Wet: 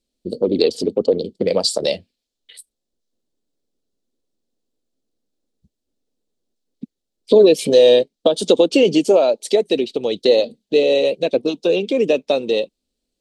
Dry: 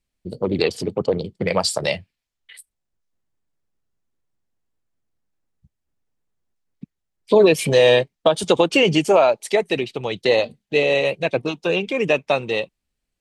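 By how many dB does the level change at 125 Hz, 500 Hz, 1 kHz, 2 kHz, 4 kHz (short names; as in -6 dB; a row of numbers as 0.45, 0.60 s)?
-6.0, +3.5, -5.5, -7.0, +1.5 dB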